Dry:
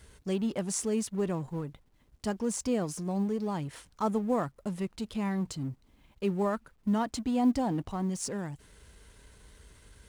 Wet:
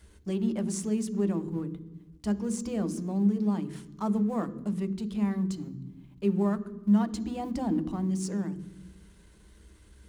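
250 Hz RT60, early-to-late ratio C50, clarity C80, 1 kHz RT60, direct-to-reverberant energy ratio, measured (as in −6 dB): 1.4 s, 15.5 dB, 16.5 dB, 1.0 s, 9.5 dB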